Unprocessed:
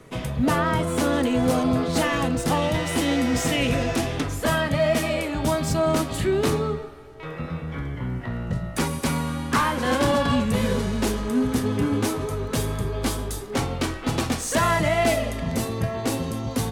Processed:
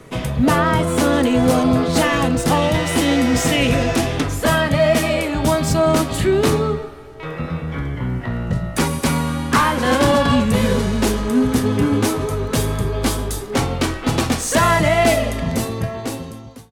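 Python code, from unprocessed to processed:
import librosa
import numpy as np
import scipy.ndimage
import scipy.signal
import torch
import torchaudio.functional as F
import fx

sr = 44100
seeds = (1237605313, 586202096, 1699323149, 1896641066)

y = fx.fade_out_tail(x, sr, length_s=1.32)
y = y * librosa.db_to_amplitude(6.0)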